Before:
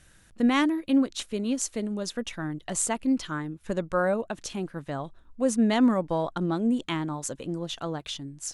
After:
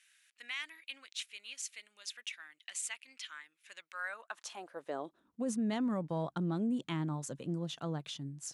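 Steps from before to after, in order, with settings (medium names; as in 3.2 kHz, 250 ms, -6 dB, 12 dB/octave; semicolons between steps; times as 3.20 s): high-pass sweep 2.3 kHz -> 140 Hz, 3.93–5.55 s; peak limiter -19 dBFS, peak gain reduction 9 dB; trim -8.5 dB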